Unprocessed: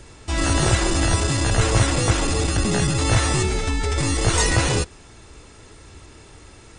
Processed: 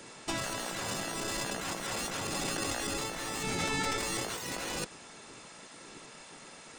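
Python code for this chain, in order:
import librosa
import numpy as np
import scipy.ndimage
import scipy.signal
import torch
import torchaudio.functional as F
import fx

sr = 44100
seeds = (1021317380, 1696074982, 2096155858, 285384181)

y = fx.tracing_dist(x, sr, depth_ms=0.047)
y = fx.spec_gate(y, sr, threshold_db=-10, keep='weak')
y = fx.over_compress(y, sr, threshold_db=-30.0, ratio=-1.0)
y = y * 10.0 ** (-5.5 / 20.0)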